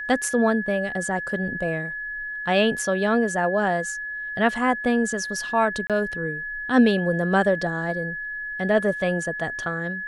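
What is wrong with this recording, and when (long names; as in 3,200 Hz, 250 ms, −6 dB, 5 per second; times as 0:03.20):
whistle 1,700 Hz −29 dBFS
0:05.87–0:05.90: drop-out 27 ms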